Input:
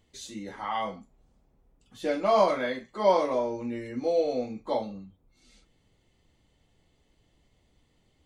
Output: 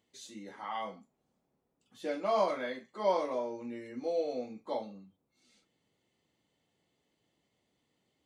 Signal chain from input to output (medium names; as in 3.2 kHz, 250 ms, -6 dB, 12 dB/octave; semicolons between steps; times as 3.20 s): high-pass 170 Hz 12 dB/octave; trim -7 dB